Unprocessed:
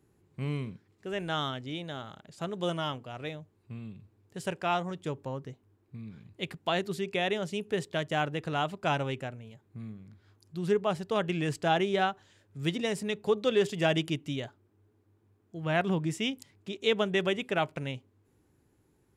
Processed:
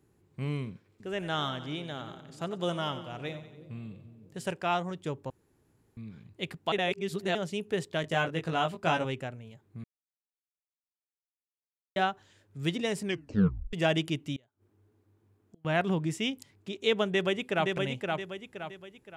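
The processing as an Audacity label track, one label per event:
0.670000	4.510000	two-band feedback delay split 460 Hz, lows 327 ms, highs 92 ms, level -12 dB
5.300000	5.970000	room tone
6.720000	7.350000	reverse
8.020000	9.050000	doubling 18 ms -4 dB
9.840000	11.960000	mute
13.030000	13.030000	tape stop 0.70 s
14.360000	15.650000	inverted gate shuts at -40 dBFS, range -29 dB
17.070000	17.750000	echo throw 520 ms, feedback 40%, level -3.5 dB

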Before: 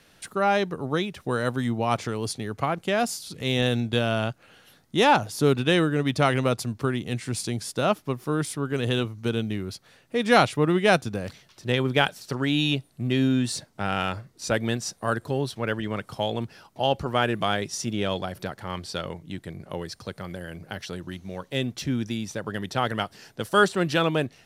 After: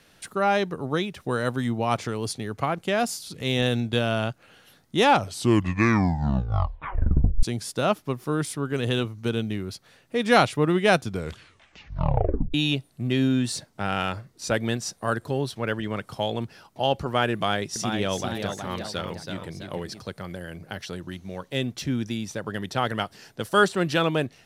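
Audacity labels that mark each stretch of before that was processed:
5.040000	5.040000	tape stop 2.39 s
11.030000	11.030000	tape stop 1.51 s
17.340000	20.000000	ever faster or slower copies 417 ms, each echo +1 st, echoes 2, each echo -6 dB

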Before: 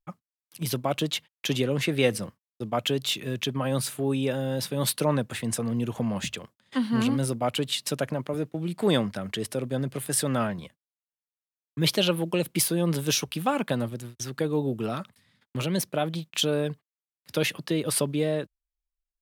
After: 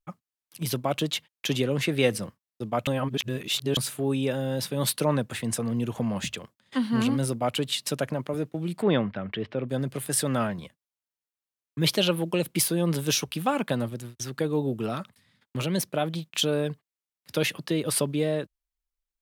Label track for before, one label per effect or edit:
2.870000	3.770000	reverse
8.820000	9.690000	low-pass 3.1 kHz 24 dB/octave

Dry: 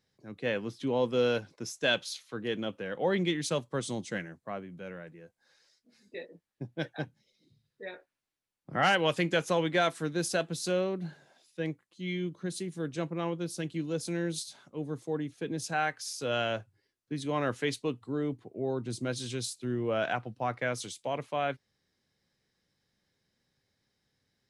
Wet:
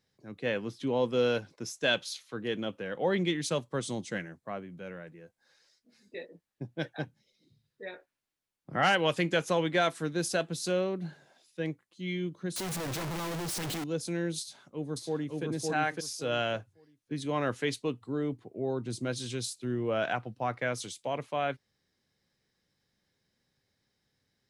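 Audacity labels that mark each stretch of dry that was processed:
12.560000	13.840000	one-bit comparator
14.400000	15.440000	echo throw 560 ms, feedback 20%, level -1 dB

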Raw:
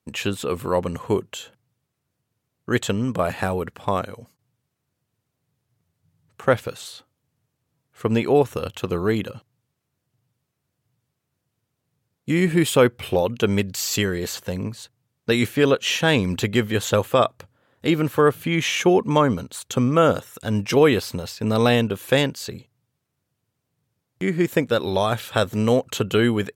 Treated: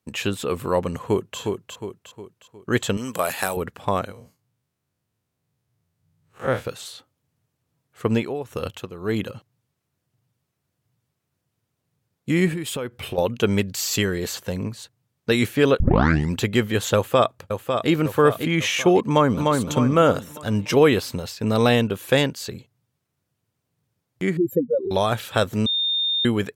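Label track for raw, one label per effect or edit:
0.980000	1.390000	echo throw 360 ms, feedback 45%, level -4.5 dB
2.970000	3.570000	RIAA curve recording
4.120000	6.650000	spectral blur width 83 ms
8.110000	9.250000	tremolo 1.8 Hz, depth 80%
12.530000	13.180000	compression 8:1, threshold -25 dBFS
15.800000	15.800000	tape start 0.52 s
16.950000	17.900000	echo throw 550 ms, feedback 50%, level -6 dB
19.010000	19.420000	echo throw 300 ms, feedback 45%, level -3 dB
24.370000	24.910000	spectral contrast enhancement exponent 3.8
25.660000	26.250000	bleep 3.64 kHz -19.5 dBFS

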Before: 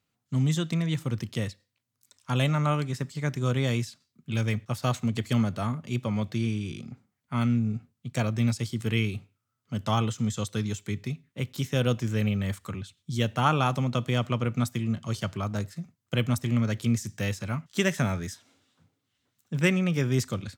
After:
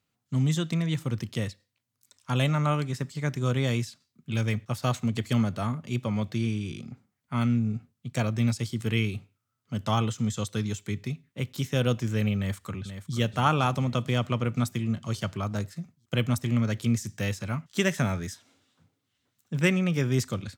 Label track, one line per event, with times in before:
12.370000	13.170000	echo throw 480 ms, feedback 55%, level -10 dB

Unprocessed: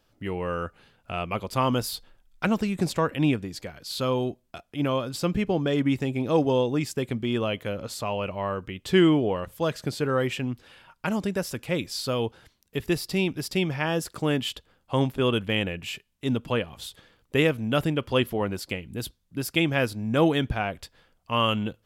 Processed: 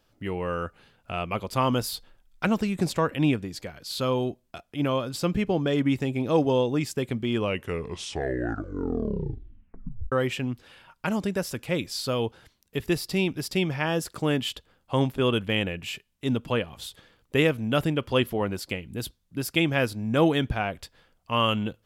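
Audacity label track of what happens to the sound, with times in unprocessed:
7.280000	7.280000	tape stop 2.84 s

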